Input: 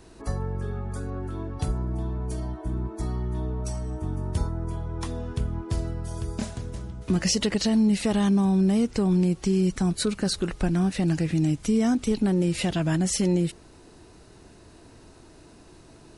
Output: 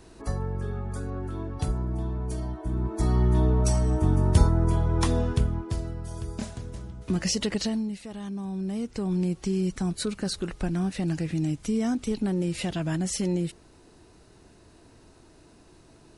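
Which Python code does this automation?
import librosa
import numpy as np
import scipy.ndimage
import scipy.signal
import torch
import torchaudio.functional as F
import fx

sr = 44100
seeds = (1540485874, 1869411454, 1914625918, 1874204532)

y = fx.gain(x, sr, db=fx.line((2.66, -0.5), (3.22, 8.0), (5.2, 8.0), (5.78, -3.0), (7.63, -3.0), (8.04, -16.0), (9.25, -4.0)))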